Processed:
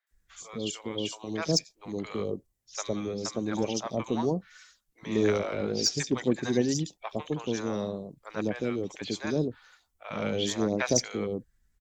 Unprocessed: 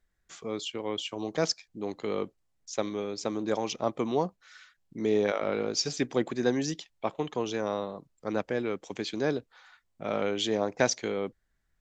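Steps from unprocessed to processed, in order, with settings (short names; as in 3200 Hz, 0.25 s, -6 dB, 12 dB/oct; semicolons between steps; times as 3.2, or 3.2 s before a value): bin magnitudes rounded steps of 15 dB; low shelf 180 Hz +11.5 dB; added harmonics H 7 -31 dB, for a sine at -7 dBFS; high shelf 4000 Hz +10 dB; three bands offset in time mids, highs, lows 70/110 ms, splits 730/3800 Hz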